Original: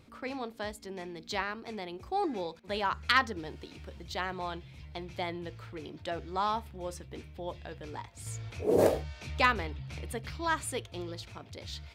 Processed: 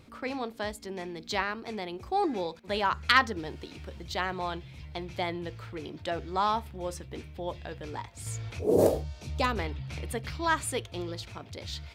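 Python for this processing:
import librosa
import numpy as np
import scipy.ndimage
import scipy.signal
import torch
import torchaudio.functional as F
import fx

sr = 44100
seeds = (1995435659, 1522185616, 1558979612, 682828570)

y = fx.peak_eq(x, sr, hz=1900.0, db=-11.5, octaves=1.8, at=(8.59, 9.57))
y = y * librosa.db_to_amplitude(3.5)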